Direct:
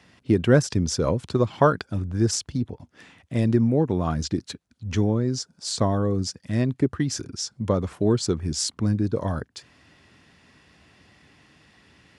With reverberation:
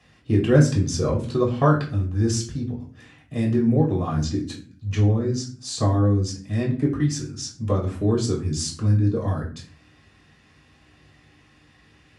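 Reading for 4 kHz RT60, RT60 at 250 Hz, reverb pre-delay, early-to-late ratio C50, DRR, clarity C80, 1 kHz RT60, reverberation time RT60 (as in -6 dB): 0.30 s, 0.75 s, 3 ms, 9.0 dB, -3.0 dB, 14.0 dB, 0.35 s, 0.40 s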